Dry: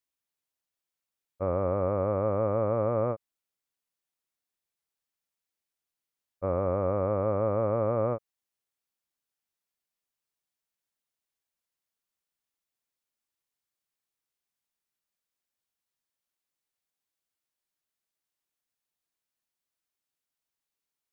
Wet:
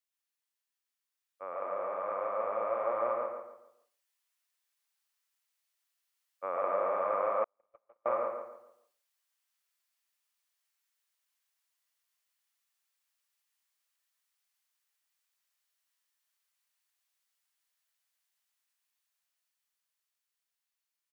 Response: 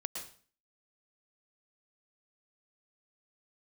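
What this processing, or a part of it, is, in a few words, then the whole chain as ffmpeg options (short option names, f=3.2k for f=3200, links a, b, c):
far laptop microphone: -filter_complex "[0:a]highpass=1.1k,asplit=2[a][b];[b]adelay=141,lowpass=f=2.2k:p=1,volume=-5dB,asplit=2[c][d];[d]adelay=141,lowpass=f=2.2k:p=1,volume=0.34,asplit=2[e][f];[f]adelay=141,lowpass=f=2.2k:p=1,volume=0.34,asplit=2[g][h];[h]adelay=141,lowpass=f=2.2k:p=1,volume=0.34[i];[a][c][e][g][i]amix=inputs=5:normalize=0[j];[1:a]atrim=start_sample=2205[k];[j][k]afir=irnorm=-1:irlink=0,highpass=110,dynaudnorm=f=410:g=13:m=6.5dB,asettb=1/sr,asplit=3[l][m][n];[l]atrim=end=7.444[o];[m]atrim=start=7.44:end=8.06,asetpts=PTS-STARTPTS,afade=t=in:d=0.004:c=qsin,afade=t=out:st=0.616:d=0.004:c=qsin,agate=range=-53dB:threshold=-23dB:ratio=16:detection=peak[p];[n]atrim=start=8.056[q];[o][p]acrossfade=d=0.004:c1=hsin:c2=qsin[r];[r][q]acrossfade=d=0.004:c1=qsin:c2=hsin"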